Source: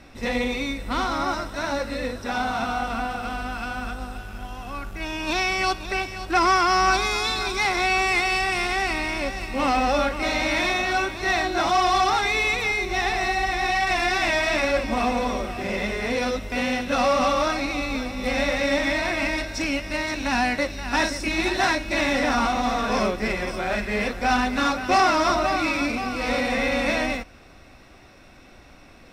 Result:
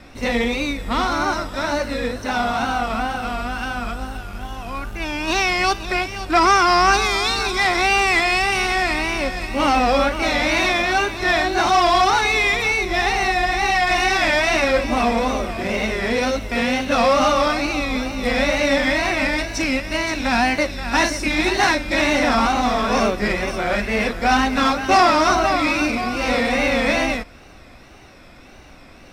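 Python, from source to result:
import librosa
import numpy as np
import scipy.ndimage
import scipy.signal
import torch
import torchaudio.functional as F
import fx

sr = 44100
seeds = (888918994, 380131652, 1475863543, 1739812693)

y = fx.wow_flutter(x, sr, seeds[0], rate_hz=2.1, depth_cents=94.0)
y = y * librosa.db_to_amplitude(4.5)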